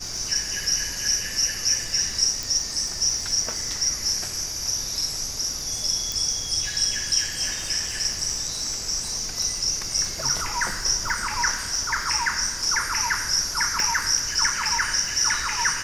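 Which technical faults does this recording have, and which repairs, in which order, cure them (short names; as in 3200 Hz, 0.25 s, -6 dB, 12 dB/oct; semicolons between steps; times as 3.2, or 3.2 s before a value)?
crackle 42/s -31 dBFS
2.43 pop
6.12 pop
13.8 pop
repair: de-click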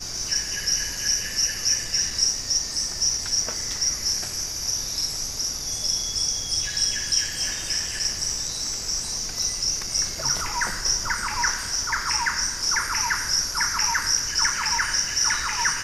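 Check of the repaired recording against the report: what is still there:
none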